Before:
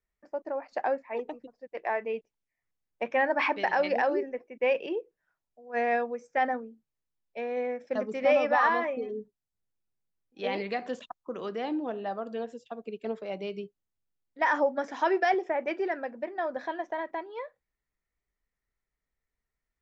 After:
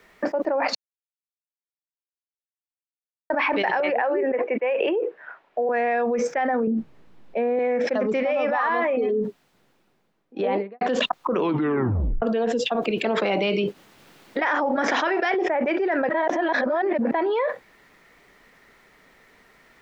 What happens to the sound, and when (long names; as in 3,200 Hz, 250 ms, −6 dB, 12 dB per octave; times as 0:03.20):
0:00.75–0:03.30: silence
0:03.80–0:05.69: three-way crossover with the lows and the highs turned down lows −14 dB, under 360 Hz, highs −22 dB, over 2,900 Hz
0:06.67–0:07.59: spectral tilt −3.5 dB per octave
0:09.07–0:10.81: fade out and dull
0:11.33: tape stop 0.89 s
0:12.75–0:15.35: ceiling on every frequency bin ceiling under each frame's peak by 12 dB
0:16.09–0:17.11: reverse
whole clip: three-way crossover with the lows and the highs turned down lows −21 dB, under 160 Hz, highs −13 dB, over 4,200 Hz; envelope flattener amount 100%; level −2.5 dB